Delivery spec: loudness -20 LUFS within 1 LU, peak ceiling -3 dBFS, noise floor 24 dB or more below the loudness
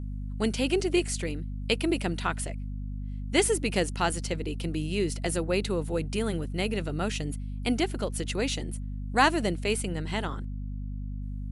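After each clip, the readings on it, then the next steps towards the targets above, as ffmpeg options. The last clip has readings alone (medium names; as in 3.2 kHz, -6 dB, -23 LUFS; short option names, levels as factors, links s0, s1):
hum 50 Hz; highest harmonic 250 Hz; hum level -32 dBFS; loudness -29.5 LUFS; peak level -9.0 dBFS; loudness target -20.0 LUFS
-> -af "bandreject=f=50:t=h:w=6,bandreject=f=100:t=h:w=6,bandreject=f=150:t=h:w=6,bandreject=f=200:t=h:w=6,bandreject=f=250:t=h:w=6"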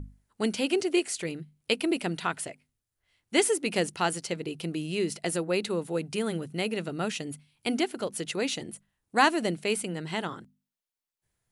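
hum not found; loudness -29.5 LUFS; peak level -9.0 dBFS; loudness target -20.0 LUFS
-> -af "volume=2.99,alimiter=limit=0.708:level=0:latency=1"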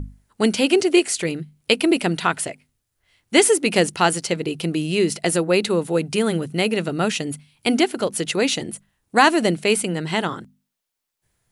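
loudness -20.5 LUFS; peak level -3.0 dBFS; noise floor -78 dBFS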